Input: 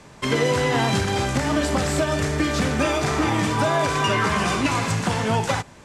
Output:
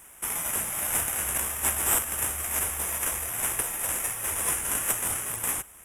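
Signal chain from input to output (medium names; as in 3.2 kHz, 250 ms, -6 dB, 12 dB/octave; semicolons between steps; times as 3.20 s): inverse Chebyshev band-stop 260–3200 Hz, stop band 70 dB; tilt EQ +4.5 dB/octave; in parallel at -6.5 dB: sample-and-hold 10×; on the sum: trim +8 dB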